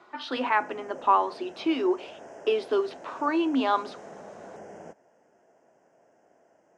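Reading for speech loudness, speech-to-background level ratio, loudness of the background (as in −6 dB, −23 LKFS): −27.0 LKFS, 18.5 dB, −45.5 LKFS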